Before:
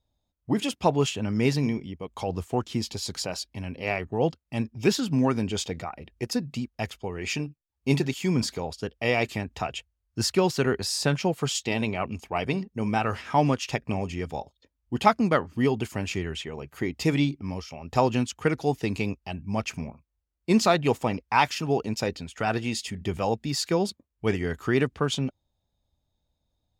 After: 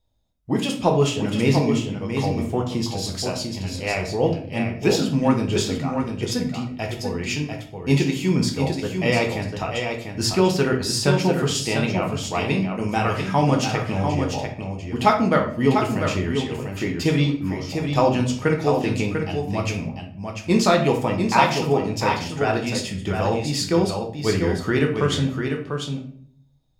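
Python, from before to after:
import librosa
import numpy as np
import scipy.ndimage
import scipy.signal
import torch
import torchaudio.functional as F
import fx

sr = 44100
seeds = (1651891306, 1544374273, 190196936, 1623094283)

y = fx.high_shelf(x, sr, hz=5400.0, db=6.0, at=(12.15, 13.68))
y = y + 10.0 ** (-6.0 / 20.0) * np.pad(y, (int(695 * sr / 1000.0), 0))[:len(y)]
y = fx.room_shoebox(y, sr, seeds[0], volume_m3=73.0, walls='mixed', distance_m=0.61)
y = y * librosa.db_to_amplitude(1.5)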